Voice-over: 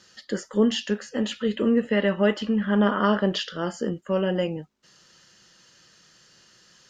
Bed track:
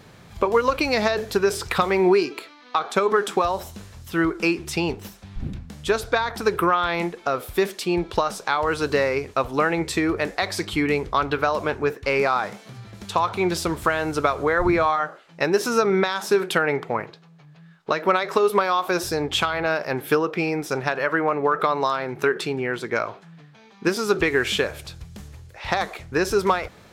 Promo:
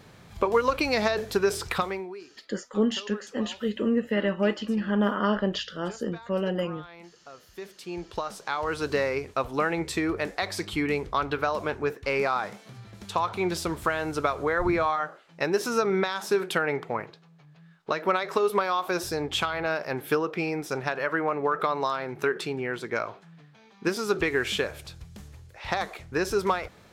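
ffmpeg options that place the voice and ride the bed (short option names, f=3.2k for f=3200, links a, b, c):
-filter_complex "[0:a]adelay=2200,volume=-3.5dB[a];[1:a]volume=14.5dB,afade=t=out:st=1.68:d=0.39:silence=0.105925,afade=t=in:st=7.48:d=1.45:silence=0.125893[b];[a][b]amix=inputs=2:normalize=0"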